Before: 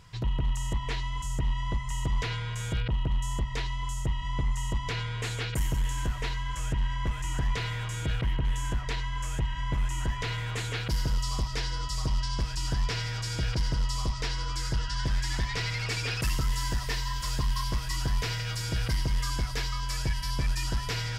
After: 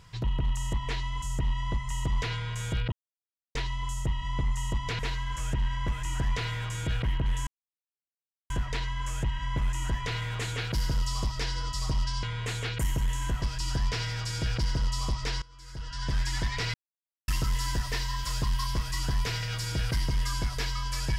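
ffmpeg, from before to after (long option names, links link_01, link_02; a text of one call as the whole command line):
ffmpeg -i in.wav -filter_complex "[0:a]asplit=10[link_01][link_02][link_03][link_04][link_05][link_06][link_07][link_08][link_09][link_10];[link_01]atrim=end=2.92,asetpts=PTS-STARTPTS,afade=type=out:start_time=2.916:duration=0.004:curve=hsin[link_11];[link_02]atrim=start=2.92:end=3.55,asetpts=PTS-STARTPTS,volume=0[link_12];[link_03]atrim=start=3.55:end=4.992,asetpts=PTS-STARTPTS,afade=type=in:duration=0.004:curve=hsin[link_13];[link_04]atrim=start=6.178:end=8.66,asetpts=PTS-STARTPTS,afade=type=out:start_time=2.478:duration=0.004:curve=hsin,apad=pad_dur=1.03[link_14];[link_05]atrim=start=8.66:end=12.392,asetpts=PTS-STARTPTS,afade=type=in:duration=0.004:curve=hsin[link_15];[link_06]atrim=start=4.988:end=6.182[link_16];[link_07]atrim=start=12.388:end=14.39,asetpts=PTS-STARTPTS,afade=type=out:start_time=1.998:duration=0.004:curve=hsin:silence=0.0794328[link_17];[link_08]atrim=start=14.39:end=15.71,asetpts=PTS-STARTPTS,afade=type=in:duration=0.72:curve=qua:silence=0.0794328,afade=type=out:start_time=1.316:duration=0.004:curve=hsin[link_18];[link_09]atrim=start=15.71:end=16.25,asetpts=PTS-STARTPTS,volume=0[link_19];[link_10]atrim=start=16.25,asetpts=PTS-STARTPTS,afade=type=in:duration=0.004:curve=hsin[link_20];[link_11][link_12][link_13]concat=n=3:v=0:a=1[link_21];[link_14][link_15]concat=n=2:v=0:a=1[link_22];[link_21][link_22]acrossfade=duration=0.004:curve1=hsin:curve2=hsin[link_23];[link_23][link_16]acrossfade=duration=0.004:curve1=hsin:curve2=hsin[link_24];[link_17][link_18][link_19][link_20]concat=n=4:v=0:a=1[link_25];[link_24][link_25]acrossfade=duration=0.004:curve1=hsin:curve2=hsin" out.wav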